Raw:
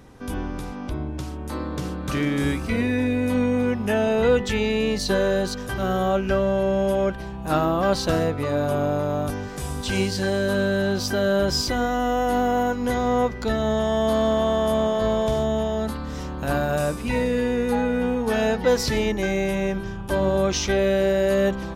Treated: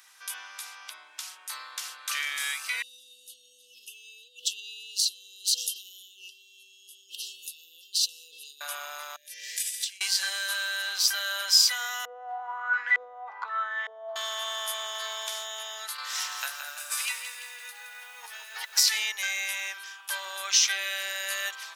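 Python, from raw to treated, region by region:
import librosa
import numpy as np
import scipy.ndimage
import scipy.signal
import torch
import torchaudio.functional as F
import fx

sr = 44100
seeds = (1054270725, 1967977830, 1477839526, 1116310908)

y = fx.chain(x, sr, fx.over_compress(threshold_db=-32.0, ratio=-1.0),
    fx.brickwall_bandstop(low_hz=520.0, high_hz=2600.0), at=(2.82, 8.61))
y = fx.chain(y, sr, fx.low_shelf(hz=170.0, db=-5.0),
    fx.over_compress(threshold_db=-33.0, ratio=-0.5),
    fx.brickwall_bandstop(low_hz=670.0, high_hz=1600.0), at=(9.16, 10.01))
y = fx.chain(y, sr, fx.over_compress(threshold_db=-27.0, ratio=-1.0),
    fx.filter_lfo_lowpass(shape='saw_up', hz=1.1, low_hz=450.0, high_hz=2100.0, q=7.0), at=(12.05, 14.16))
y = fx.chain(y, sr, fx.highpass(hz=200.0, slope=12),
    fx.over_compress(threshold_db=-29.0, ratio=-0.5),
    fx.echo_crushed(ms=169, feedback_pct=55, bits=9, wet_db=-8.0), at=(15.98, 18.8))
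y = scipy.signal.sosfilt(scipy.signal.bessel(4, 1900.0, 'highpass', norm='mag', fs=sr, output='sos'), y)
y = fx.high_shelf(y, sr, hz=4600.0, db=6.5)
y = y * librosa.db_to_amplitude(3.0)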